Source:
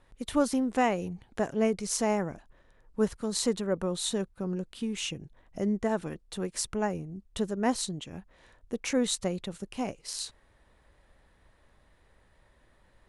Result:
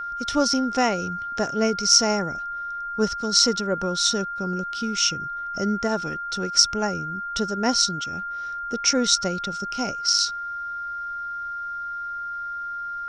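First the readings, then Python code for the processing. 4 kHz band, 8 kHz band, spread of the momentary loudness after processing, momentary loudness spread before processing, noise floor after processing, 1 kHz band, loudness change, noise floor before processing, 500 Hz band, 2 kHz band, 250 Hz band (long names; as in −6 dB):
+15.5 dB, +11.5 dB, 12 LU, 12 LU, −32 dBFS, +11.0 dB, +8.0 dB, −65 dBFS, +3.5 dB, +11.5 dB, +3.5 dB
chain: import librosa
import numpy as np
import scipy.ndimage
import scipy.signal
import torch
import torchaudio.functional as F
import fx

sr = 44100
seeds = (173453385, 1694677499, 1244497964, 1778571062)

y = fx.lowpass_res(x, sr, hz=5500.0, q=13.0)
y = y + 10.0 ** (-32.0 / 20.0) * np.sin(2.0 * np.pi * 1400.0 * np.arange(len(y)) / sr)
y = y * 10.0 ** (3.5 / 20.0)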